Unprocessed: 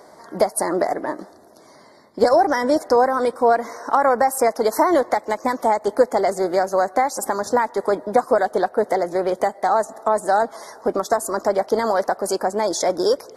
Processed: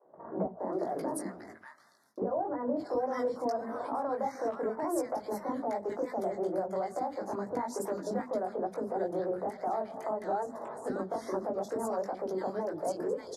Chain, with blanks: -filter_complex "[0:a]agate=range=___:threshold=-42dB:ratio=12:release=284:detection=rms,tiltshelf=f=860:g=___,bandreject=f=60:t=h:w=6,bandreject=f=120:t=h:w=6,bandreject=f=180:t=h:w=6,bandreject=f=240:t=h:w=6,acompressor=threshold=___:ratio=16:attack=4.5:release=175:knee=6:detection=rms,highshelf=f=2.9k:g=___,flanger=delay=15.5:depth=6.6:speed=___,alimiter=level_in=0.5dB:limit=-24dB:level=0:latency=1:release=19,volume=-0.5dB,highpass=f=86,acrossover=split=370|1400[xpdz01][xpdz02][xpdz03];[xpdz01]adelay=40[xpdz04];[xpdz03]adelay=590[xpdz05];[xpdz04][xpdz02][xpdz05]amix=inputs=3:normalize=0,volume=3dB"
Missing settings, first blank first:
-26dB, 6, -25dB, -5, 2.3